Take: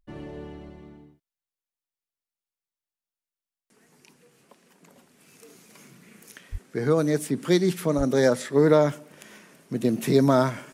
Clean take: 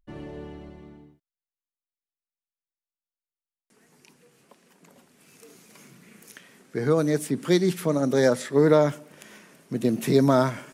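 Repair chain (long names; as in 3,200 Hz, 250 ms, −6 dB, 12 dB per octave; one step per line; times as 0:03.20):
high-pass at the plosives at 0:06.51/0:07.97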